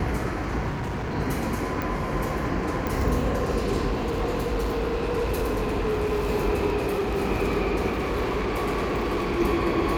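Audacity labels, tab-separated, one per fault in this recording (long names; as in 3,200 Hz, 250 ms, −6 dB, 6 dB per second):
0.690000	1.150000	clipping −26.5 dBFS
1.820000	1.820000	click
2.870000	2.870000	click
3.900000	6.270000	clipping −21.5 dBFS
6.760000	7.190000	clipping −22 dBFS
7.910000	9.410000	clipping −22.5 dBFS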